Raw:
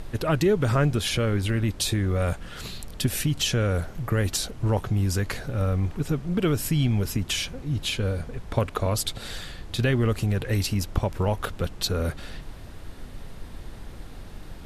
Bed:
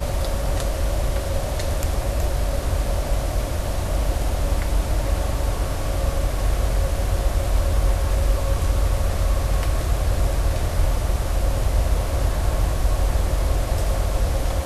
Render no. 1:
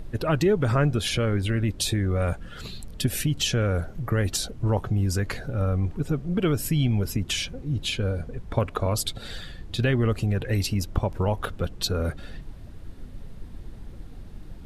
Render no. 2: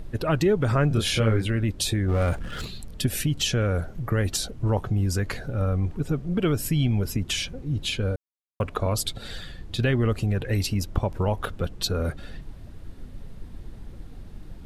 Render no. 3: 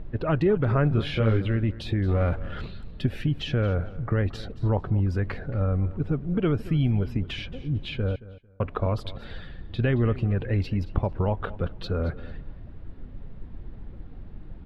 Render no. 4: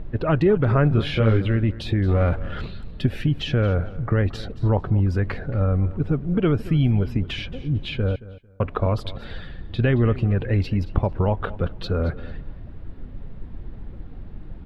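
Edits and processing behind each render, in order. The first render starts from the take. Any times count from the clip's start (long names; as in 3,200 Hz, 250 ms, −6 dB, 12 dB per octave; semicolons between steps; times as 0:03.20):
broadband denoise 9 dB, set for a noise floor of −41 dBFS
0:00.88–0:01.46: double-tracking delay 27 ms −2.5 dB; 0:02.08–0:02.65: power curve on the samples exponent 0.7; 0:08.16–0:08.60: silence
high-frequency loss of the air 380 metres; repeating echo 224 ms, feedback 22%, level −17.5 dB
level +4 dB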